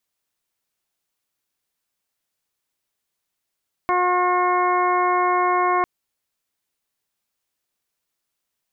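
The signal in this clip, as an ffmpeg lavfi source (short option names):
-f lavfi -i "aevalsrc='0.0668*sin(2*PI*360*t)+0.0794*sin(2*PI*720*t)+0.112*sin(2*PI*1080*t)+0.0266*sin(2*PI*1440*t)+0.0224*sin(2*PI*1800*t)+0.0335*sin(2*PI*2160*t)':d=1.95:s=44100"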